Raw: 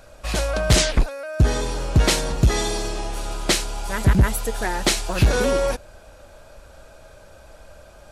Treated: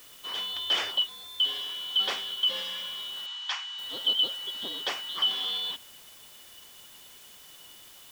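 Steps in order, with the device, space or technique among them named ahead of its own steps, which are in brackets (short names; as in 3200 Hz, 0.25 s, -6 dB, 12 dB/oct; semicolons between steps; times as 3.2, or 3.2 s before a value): split-band scrambled radio (four-band scrambler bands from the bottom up 2413; BPF 360–3000 Hz; white noise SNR 19 dB); 3.26–3.79 elliptic band-pass 880–6900 Hz, stop band 40 dB; gain -8 dB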